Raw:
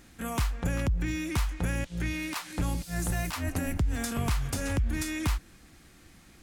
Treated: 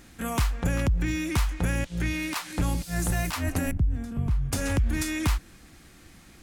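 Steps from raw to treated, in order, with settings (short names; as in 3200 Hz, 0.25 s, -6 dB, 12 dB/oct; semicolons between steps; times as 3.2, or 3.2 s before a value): 3.71–4.52 EQ curve 150 Hz 0 dB, 550 Hz -12 dB, 7300 Hz -23 dB; gain +3.5 dB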